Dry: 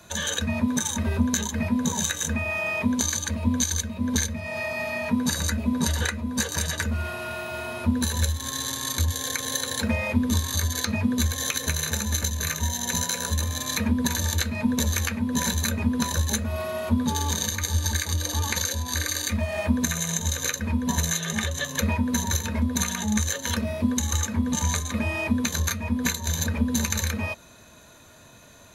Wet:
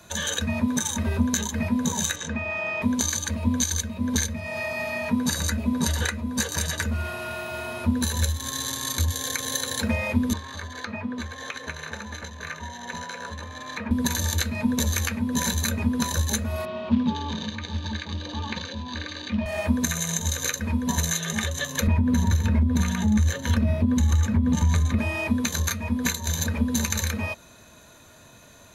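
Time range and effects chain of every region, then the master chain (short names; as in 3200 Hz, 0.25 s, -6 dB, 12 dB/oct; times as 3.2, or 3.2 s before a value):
2.16–2.82 HPF 120 Hz 6 dB/oct + air absorption 120 m
10.33–13.91 LPF 1500 Hz + tilt +3.5 dB/oct
16.65–19.46 short-mantissa float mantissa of 2-bit + speaker cabinet 110–3700 Hz, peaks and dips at 210 Hz +6 dB, 470 Hz -4 dB, 710 Hz -4 dB, 1400 Hz -6 dB, 2000 Hz -7 dB
21.87–24.99 tone controls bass +11 dB, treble -8 dB + compressor, threshold -16 dBFS
whole clip: dry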